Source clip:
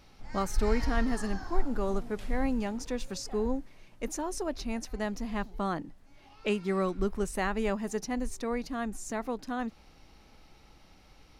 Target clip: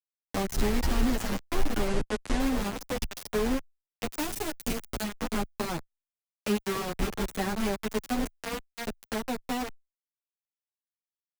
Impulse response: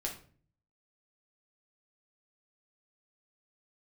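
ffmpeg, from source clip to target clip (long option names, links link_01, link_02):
-filter_complex "[0:a]asettb=1/sr,asplit=3[link_01][link_02][link_03];[link_01]atrim=end=8.244[link_04];[link_02]atrim=start=8.24:end=8.87,asetpts=PTS-STARTPTS,afade=type=in:duration=0.004:curve=qsin,afade=type=out:start_time=0.626:duration=0.004:curve=qsin,aeval=exprs='0.0891*(cos(1*acos(clip(val(0)/0.0891,-1,1)))-cos(1*PI/2))+0.0224*(cos(3*acos(clip(val(0)/0.0891,-1,1)))-cos(3*PI/2))+0.00141*(cos(4*acos(clip(val(0)/0.0891,-1,1)))-cos(4*PI/2))+0.00501*(cos(7*acos(clip(val(0)/0.0891,-1,1)))-cos(7*PI/2))':channel_layout=same[link_05];[link_03]atrim=start=8.866[link_06];[link_04][link_05]acrossfade=duration=0.004:curve1=hsin:curve2=qsin[link_07];[link_07][link_06]acrossfade=duration=0.004:curve1=qsin:curve2=hsin,adynamicequalizer=threshold=0.00251:dfrequency=820:dqfactor=7.8:tfrequency=820:tqfactor=7.8:attack=5:release=100:ratio=0.375:range=2.5:mode=boostabove:tftype=bell,asplit=2[link_08][link_09];[link_09]alimiter=limit=-24dB:level=0:latency=1:release=370,volume=1dB[link_10];[link_08][link_10]amix=inputs=2:normalize=0,asplit=2[link_11][link_12];[link_12]adelay=287,lowpass=frequency=2800:poles=1,volume=-14dB,asplit=2[link_13][link_14];[link_14]adelay=287,lowpass=frequency=2800:poles=1,volume=0.33,asplit=2[link_15][link_16];[link_16]adelay=287,lowpass=frequency=2800:poles=1,volume=0.33[link_17];[link_11][link_13][link_15][link_17]amix=inputs=4:normalize=0,acrusher=bits=3:mix=0:aa=0.000001,asettb=1/sr,asplit=3[link_18][link_19][link_20];[link_18]atrim=end=1.874[link_21];[link_19]atrim=start=1.87:end=2.4,asetpts=PTS-STARTPTS,afade=type=in:duration=0.004:curve=qsin,afade=type=out:start_time=0.526:duration=0.004:curve=qsin,lowpass=frequency=9700:width=0.5412,lowpass=frequency=9700:width=1.3066[link_22];[link_20]atrim=start=2.396[link_23];[link_21][link_22]acrossfade=duration=0.004:curve1=hsin:curve2=qsin[link_24];[link_24][link_23]acrossfade=duration=0.004:curve1=qsin:curve2=hsin,asettb=1/sr,asplit=3[link_25][link_26][link_27];[link_25]atrim=end=4.184[link_28];[link_26]atrim=start=4.18:end=5.03,asetpts=PTS-STARTPTS,afade=type=in:duration=0.004:curve=qsin,afade=type=out:start_time=0.846:duration=0.004:curve=qsin,highshelf=frequency=4100:gain=8.5[link_29];[link_27]atrim=start=5.026[link_30];[link_28][link_29]acrossfade=duration=0.004:curve1=hsin:curve2=qsin[link_31];[link_31][link_30]acrossfade=duration=0.004:curve1=qsin:curve2=hsin,acrossover=split=360[link_32][link_33];[link_33]acompressor=threshold=-28dB:ratio=4[link_34];[link_32][link_34]amix=inputs=2:normalize=0,asplit=2[link_35][link_36];[link_36]adelay=8.9,afreqshift=0.85[link_37];[link_35][link_37]amix=inputs=2:normalize=1"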